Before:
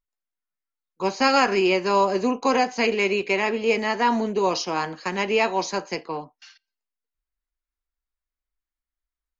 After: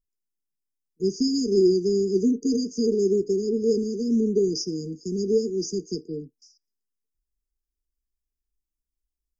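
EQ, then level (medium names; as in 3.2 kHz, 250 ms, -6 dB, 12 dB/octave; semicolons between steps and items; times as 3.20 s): brick-wall FIR band-stop 470–4700 Hz; bass shelf 490 Hz +4.5 dB; 0.0 dB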